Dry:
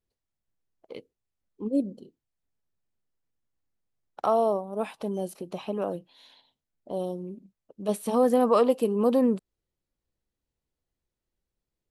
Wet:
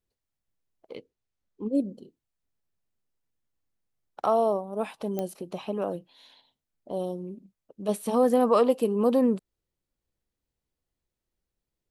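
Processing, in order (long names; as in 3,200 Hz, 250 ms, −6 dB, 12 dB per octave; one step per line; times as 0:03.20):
0:00.95–0:01.75: low-pass filter 7,000 Hz
digital clicks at 0:05.19, −17 dBFS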